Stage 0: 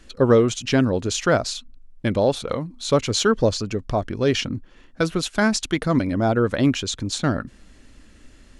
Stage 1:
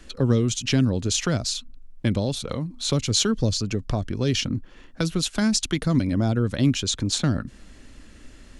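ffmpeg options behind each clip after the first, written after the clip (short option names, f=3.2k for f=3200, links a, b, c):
-filter_complex "[0:a]acrossover=split=250|3000[a][b][c];[b]acompressor=threshold=-32dB:ratio=6[d];[a][d][c]amix=inputs=3:normalize=0,volume=2.5dB"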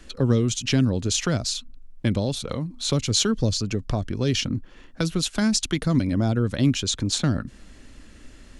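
-af anull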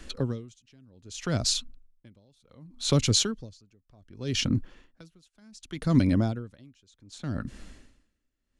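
-af "aeval=exprs='val(0)*pow(10,-38*(0.5-0.5*cos(2*PI*0.66*n/s))/20)':c=same,volume=1.5dB"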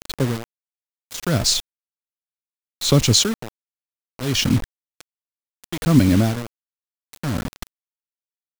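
-af "acrusher=bits=5:mix=0:aa=0.000001,volume=7.5dB"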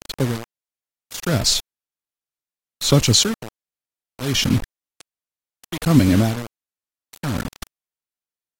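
-ar 44100 -c:a aac -b:a 48k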